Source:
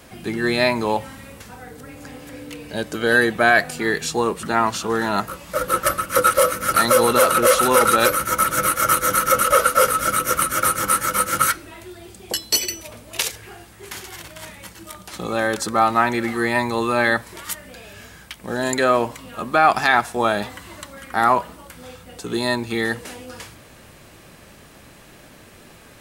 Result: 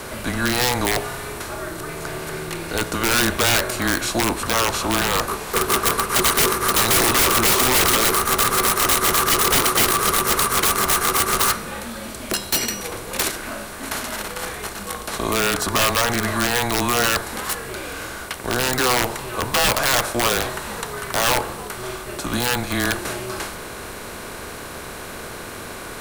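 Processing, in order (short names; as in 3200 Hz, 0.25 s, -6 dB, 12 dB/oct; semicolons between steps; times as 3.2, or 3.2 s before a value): per-bin compression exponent 0.6; wrapped overs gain 7 dB; frequency shift -130 Hz; gain -3.5 dB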